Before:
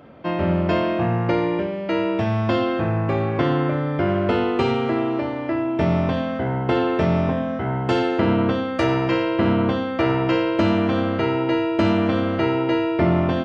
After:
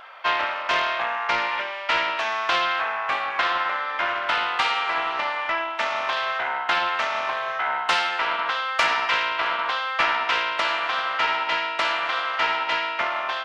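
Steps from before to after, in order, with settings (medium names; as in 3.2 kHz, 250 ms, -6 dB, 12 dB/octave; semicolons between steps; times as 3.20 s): gain riding 0.5 s; high-pass 970 Hz 24 dB/octave; loudspeaker Doppler distortion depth 0.61 ms; trim +7.5 dB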